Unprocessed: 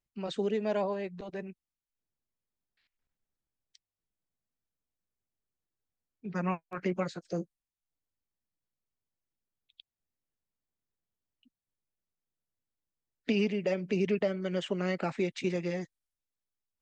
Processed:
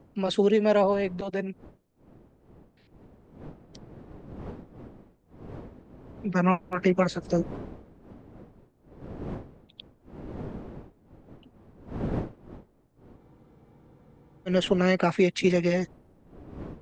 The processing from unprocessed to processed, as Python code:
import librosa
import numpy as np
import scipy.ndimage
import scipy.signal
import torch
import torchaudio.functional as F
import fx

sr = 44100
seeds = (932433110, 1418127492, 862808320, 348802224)

y = fx.dmg_wind(x, sr, seeds[0], corner_hz=330.0, level_db=-52.0)
y = fx.spec_freeze(y, sr, seeds[1], at_s=13.18, hold_s=1.3)
y = F.gain(torch.from_numpy(y), 9.0).numpy()